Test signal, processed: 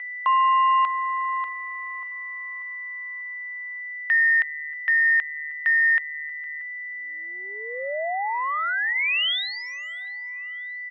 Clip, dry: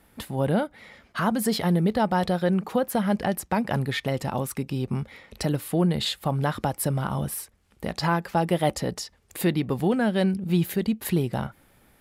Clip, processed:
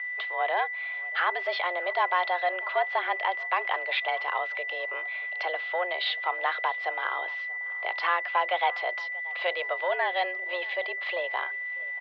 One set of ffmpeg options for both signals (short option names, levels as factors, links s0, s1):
-filter_complex "[0:a]highshelf=f=2500:g=10.5,asoftclip=type=tanh:threshold=0.188,aeval=exprs='val(0)+0.0282*sin(2*PI*1800*n/s)':c=same,asplit=2[s0][s1];[s1]adelay=633,lowpass=f=2600:p=1,volume=0.0841,asplit=2[s2][s3];[s3]adelay=633,lowpass=f=2600:p=1,volume=0.46,asplit=2[s4][s5];[s5]adelay=633,lowpass=f=2600:p=1,volume=0.46[s6];[s0][s2][s4][s6]amix=inputs=4:normalize=0,highpass=f=380:t=q:w=0.5412,highpass=f=380:t=q:w=1.307,lowpass=f=3200:t=q:w=0.5176,lowpass=f=3200:t=q:w=0.7071,lowpass=f=3200:t=q:w=1.932,afreqshift=180"